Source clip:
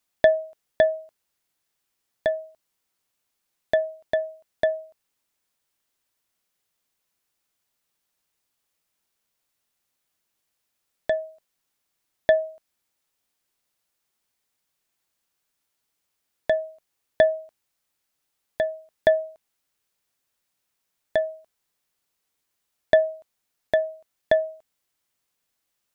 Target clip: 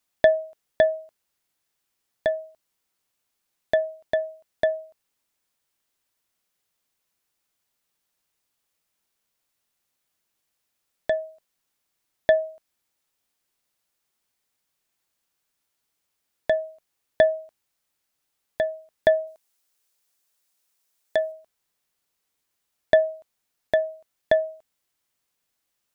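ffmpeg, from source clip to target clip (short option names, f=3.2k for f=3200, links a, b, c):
-filter_complex "[0:a]asettb=1/sr,asplit=3[a][b][c];[a]atrim=end=19.274[d];[b]atrim=start=19.27:end=21.32,asetpts=PTS-STARTPTS,afade=t=in:d=0.004:c=qsin,afade=t=out:st=2.046:d=0.004:c=qsin,bass=f=250:g=-8,treble=f=4k:g=6[e];[c]atrim=start=21.316[f];[d][e]acrossfade=d=0.004:c1=hsin:c2=qsin[g];[g][f]acrossfade=d=0.004:c1=qsin:c2=hsin"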